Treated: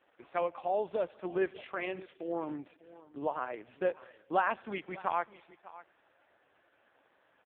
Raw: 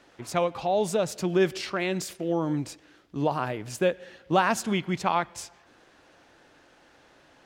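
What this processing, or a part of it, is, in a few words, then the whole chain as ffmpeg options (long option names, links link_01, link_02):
satellite phone: -filter_complex "[0:a]asettb=1/sr,asplit=3[link_01][link_02][link_03];[link_01]atrim=end=1.564[link_04];[link_02]atrim=start=1.56:end=2.06,asetpts=PTS-STARTPTS,afade=type=in:duration=0.004:curve=qsin,afade=type=out:start_time=0.496:duration=0.004:curve=qsin,bandreject=frequency=99.01:width_type=h:width=4,bandreject=frequency=198.02:width_type=h:width=4,bandreject=frequency=297.03:width_type=h:width=4,bandreject=frequency=396.04:width_type=h:width=4,bandreject=frequency=495.05:width_type=h:width=4,bandreject=frequency=594.06:width_type=h:width=4,bandreject=frequency=693.07:width_type=h:width=4,bandreject=frequency=792.08:width_type=h:width=4,bandreject=frequency=891.09:width_type=h:width=4,bandreject=frequency=990.1:width_type=h:width=4,bandreject=frequency=1089.11:width_type=h:width=4,bandreject=frequency=1188.12:width_type=h:width=4,bandreject=frequency=1287.13:width_type=h:width=4,bandreject=frequency=1386.14:width_type=h:width=4,bandreject=frequency=1485.15:width_type=h:width=4,bandreject=frequency=1584.16:width_type=h:width=4,bandreject=frequency=1683.17:width_type=h:width=4,bandreject=frequency=1782.18:width_type=h:width=4,bandreject=frequency=1881.19:width_type=h:width=4,bandreject=frequency=1980.2:width_type=h:width=4,bandreject=frequency=2079.21:width_type=h:width=4,bandreject=frequency=2178.22:width_type=h:width=4,bandreject=frequency=2277.23:width_type=h:width=4,bandreject=frequency=2376.24:width_type=h:width=4,bandreject=frequency=2475.25:width_type=h:width=4,bandreject=frequency=2574.26:width_type=h:width=4,bandreject=frequency=2673.27:width_type=h:width=4,bandreject=frequency=2772.28:width_type=h:width=4,bandreject=frequency=2871.29:width_type=h:width=4,bandreject=frequency=2970.3:width_type=h:width=4[link_05];[link_03]atrim=start=2.056[link_06];[link_04][link_05]acrossfade=duration=0.004:curve1=hsin:curve2=qsin[link_07];[link_07][link_06]acrossfade=duration=0.004:curve1=qsin:curve2=hsin,highpass=380,lowpass=3000,aecho=1:1:597:0.119,volume=-5dB" -ar 8000 -c:a libopencore_amrnb -b:a 4750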